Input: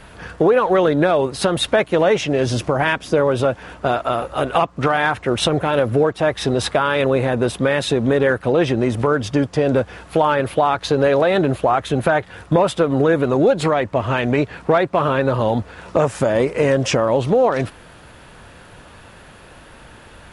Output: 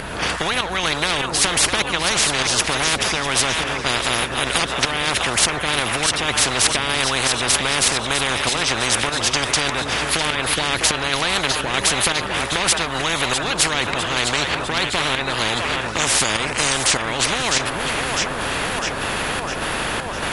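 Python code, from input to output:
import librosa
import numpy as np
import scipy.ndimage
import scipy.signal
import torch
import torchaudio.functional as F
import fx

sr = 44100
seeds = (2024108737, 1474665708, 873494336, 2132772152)

y = fx.volume_shaper(x, sr, bpm=99, per_beat=1, depth_db=-11, release_ms=222.0, shape='slow start')
y = fx.echo_split(y, sr, split_hz=420.0, low_ms=456, high_ms=653, feedback_pct=52, wet_db=-15.0)
y = fx.spectral_comp(y, sr, ratio=10.0)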